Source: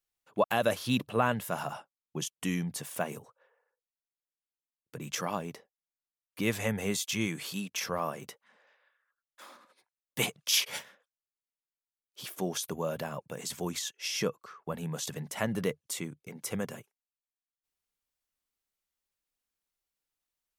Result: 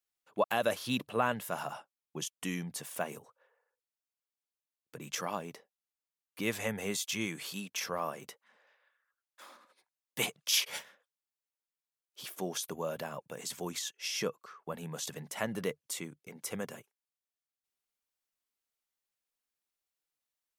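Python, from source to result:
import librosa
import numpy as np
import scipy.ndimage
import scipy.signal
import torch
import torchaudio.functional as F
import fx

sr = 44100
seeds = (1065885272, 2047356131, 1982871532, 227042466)

y = fx.low_shelf(x, sr, hz=150.0, db=-10.0)
y = y * 10.0 ** (-2.0 / 20.0)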